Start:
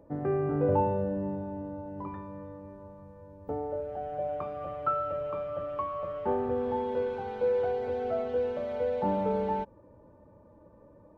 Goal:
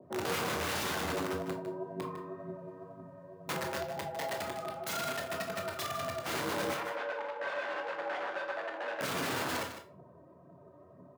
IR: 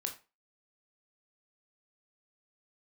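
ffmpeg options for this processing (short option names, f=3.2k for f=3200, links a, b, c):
-filter_complex "[0:a]aphaser=in_gain=1:out_gain=1:delay=4.7:decay=0.6:speed=2:type=triangular,aeval=exprs='(mod(18.8*val(0)+1,2)-1)/18.8':c=same,afreqshift=77,asettb=1/sr,asplit=3[a][b][c];[a]atrim=end=6.744[d];[b]atrim=start=6.74:end=9.01,asetpts=PTS-STARTPTS,afade=t=in:d=0.004:c=qsin,afade=t=out:st=2.266:d=0.004:c=qsin,highpass=570,lowpass=2.1k[e];[c]atrim=start=9.006[f];[d][e]acrossfade=d=0.004:c1=hsin:c2=qsin[g];[g][f]acrossfade=d=0.004:c1=qsin:c2=hsin,aecho=1:1:154:0.299[h];[1:a]atrim=start_sample=2205[i];[h][i]afir=irnorm=-1:irlink=0,adynamicequalizer=threshold=0.00447:dfrequency=1600:dqfactor=0.7:tfrequency=1600:tqfactor=0.7:attack=5:release=100:ratio=0.375:range=2:mode=cutabove:tftype=highshelf,volume=-2.5dB"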